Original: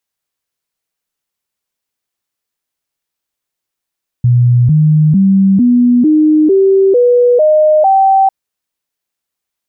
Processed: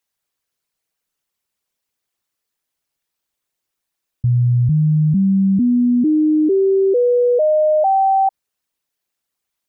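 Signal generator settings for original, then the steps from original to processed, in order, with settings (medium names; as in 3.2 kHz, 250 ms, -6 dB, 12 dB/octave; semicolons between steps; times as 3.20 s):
stepped sine 122 Hz up, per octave 3, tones 9, 0.45 s, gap 0.00 s -5 dBFS
resonances exaggerated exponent 1.5; peak limiter -11 dBFS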